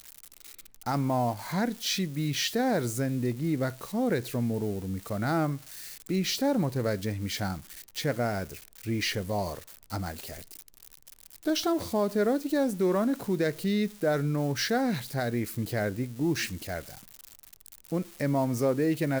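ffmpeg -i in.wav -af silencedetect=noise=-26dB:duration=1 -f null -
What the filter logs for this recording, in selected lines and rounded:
silence_start: 10.10
silence_end: 11.47 | silence_duration: 1.37
silence_start: 16.79
silence_end: 17.92 | silence_duration: 1.14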